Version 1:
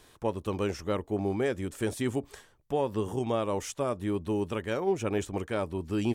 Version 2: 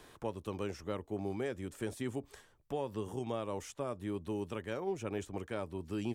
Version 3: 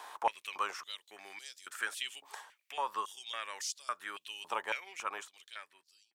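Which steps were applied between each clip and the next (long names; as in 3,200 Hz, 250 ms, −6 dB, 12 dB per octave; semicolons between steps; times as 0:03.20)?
multiband upward and downward compressor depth 40%; level −8.5 dB
fade-out on the ending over 1.40 s; high-pass on a step sequencer 3.6 Hz 880–4,600 Hz; level +6 dB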